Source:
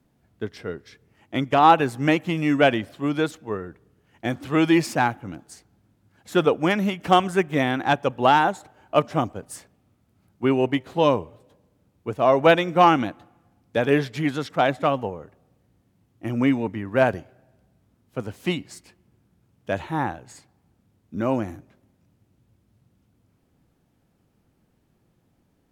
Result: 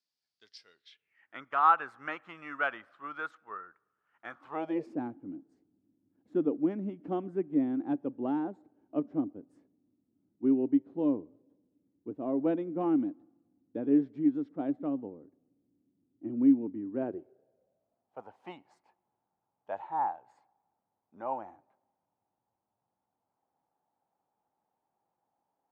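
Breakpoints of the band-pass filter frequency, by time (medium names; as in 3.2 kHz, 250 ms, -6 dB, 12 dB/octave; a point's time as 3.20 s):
band-pass filter, Q 5.3
0.71 s 4.8 kHz
1.40 s 1.3 kHz
4.36 s 1.3 kHz
5.01 s 290 Hz
16.92 s 290 Hz
18.23 s 840 Hz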